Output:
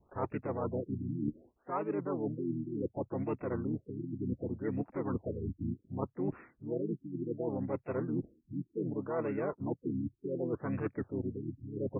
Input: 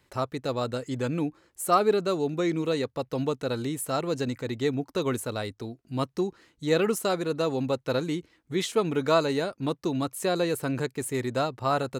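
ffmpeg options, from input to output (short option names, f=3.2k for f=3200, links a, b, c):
-filter_complex "[0:a]asplit=3[a][b][c];[b]asetrate=33038,aresample=44100,atempo=1.33484,volume=-1dB[d];[c]asetrate=58866,aresample=44100,atempo=0.749154,volume=-17dB[e];[a][d][e]amix=inputs=3:normalize=0,adynamicequalizer=threshold=0.00891:dfrequency=2300:dqfactor=0.89:tfrequency=2300:tqfactor=0.89:attack=5:release=100:ratio=0.375:range=2:mode=cutabove:tftype=bell,areverse,acompressor=threshold=-35dB:ratio=16,areverse,afftfilt=real='re*lt(b*sr/1024,340*pow(2800/340,0.5+0.5*sin(2*PI*0.67*pts/sr)))':imag='im*lt(b*sr/1024,340*pow(2800/340,0.5+0.5*sin(2*PI*0.67*pts/sr)))':win_size=1024:overlap=0.75,volume=4dB"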